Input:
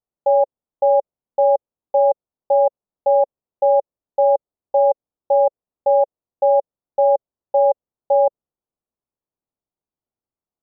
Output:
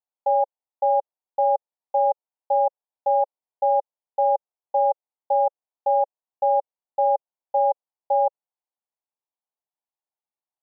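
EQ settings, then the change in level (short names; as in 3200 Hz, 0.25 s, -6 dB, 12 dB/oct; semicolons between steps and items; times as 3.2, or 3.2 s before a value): band-pass 870 Hz, Q 2.6; 0.0 dB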